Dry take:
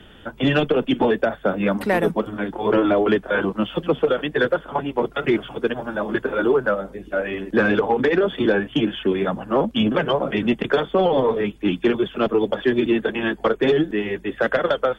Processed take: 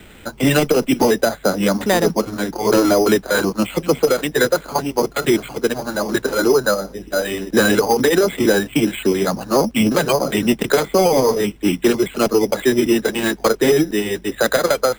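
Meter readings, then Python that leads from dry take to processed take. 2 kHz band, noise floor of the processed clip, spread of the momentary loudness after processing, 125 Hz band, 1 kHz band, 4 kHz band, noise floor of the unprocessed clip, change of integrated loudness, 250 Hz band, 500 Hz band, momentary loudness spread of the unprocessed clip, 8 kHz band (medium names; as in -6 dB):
+2.5 dB, -42 dBFS, 6 LU, +3.5 dB, +3.0 dB, +6.0 dB, -46 dBFS, +3.5 dB, +3.5 dB, +3.5 dB, 6 LU, no reading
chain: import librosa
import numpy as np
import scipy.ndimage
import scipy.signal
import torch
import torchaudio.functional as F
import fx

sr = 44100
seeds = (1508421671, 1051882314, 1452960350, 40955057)

y = np.repeat(x[::8], 8)[:len(x)]
y = y * 10.0 ** (3.5 / 20.0)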